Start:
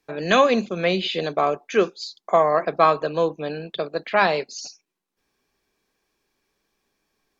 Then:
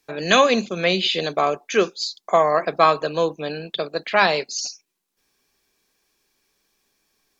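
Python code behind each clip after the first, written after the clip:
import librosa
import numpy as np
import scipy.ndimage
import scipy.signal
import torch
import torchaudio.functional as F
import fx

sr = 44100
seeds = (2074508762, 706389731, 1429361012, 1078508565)

y = fx.high_shelf(x, sr, hz=3000.0, db=10.0)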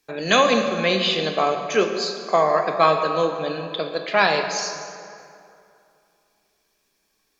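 y = fx.rev_plate(x, sr, seeds[0], rt60_s=2.6, hf_ratio=0.6, predelay_ms=0, drr_db=4.5)
y = y * 10.0 ** (-1.5 / 20.0)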